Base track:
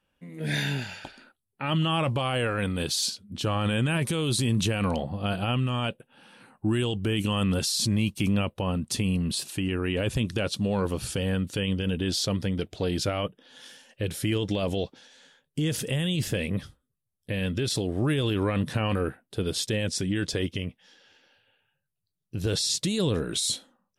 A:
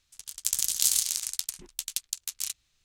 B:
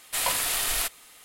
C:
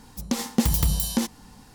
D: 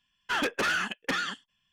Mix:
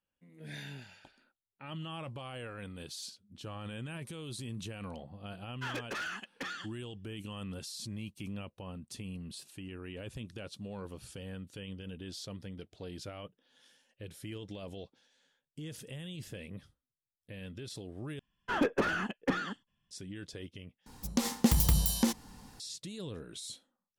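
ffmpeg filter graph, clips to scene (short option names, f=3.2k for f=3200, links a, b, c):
-filter_complex "[4:a]asplit=2[a][b];[0:a]volume=-16.5dB[c];[a]acontrast=30[d];[b]tiltshelf=f=1.2k:g=9[e];[c]asplit=3[f][g][h];[f]atrim=end=18.194[i];[e]atrim=end=1.72,asetpts=PTS-STARTPTS,volume=-4dB[j];[g]atrim=start=19.906:end=20.864[k];[3:a]atrim=end=1.74,asetpts=PTS-STARTPTS,volume=-4dB[l];[h]atrim=start=22.596[m];[d]atrim=end=1.72,asetpts=PTS-STARTPTS,volume=-16dB,afade=t=in:d=0.004:c=hsin,afade=t=out:st=1.716:d=0.004:c=hsin,adelay=5320[n];[i][j]acrossfade=d=0.004:c1=hsin:c2=hsin[o];[o][k]acrossfade=d=0.004:c1=hsin:c2=hsin[p];[p][l]acrossfade=d=0.004:c1=hsin:c2=hsin[q];[q][m]acrossfade=d=0.004:c1=hsin:c2=hsin[r];[r][n]amix=inputs=2:normalize=0"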